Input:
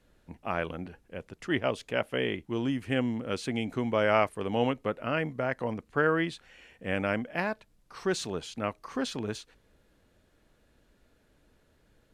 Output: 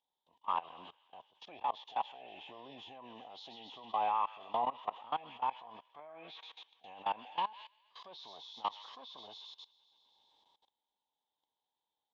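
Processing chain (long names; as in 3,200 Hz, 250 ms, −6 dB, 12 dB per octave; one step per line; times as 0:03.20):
hearing-aid frequency compression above 1,600 Hz 1.5 to 1
on a send: delay with a high-pass on its return 129 ms, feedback 66%, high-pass 1,600 Hz, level −7 dB
on the sum: treble cut that deepens with the level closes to 2,000 Hz, closed at −23 dBFS
pair of resonant band-passes 1,400 Hz, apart 1.8 octaves
formants moved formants +5 semitones
output level in coarse steps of 20 dB
level +8.5 dB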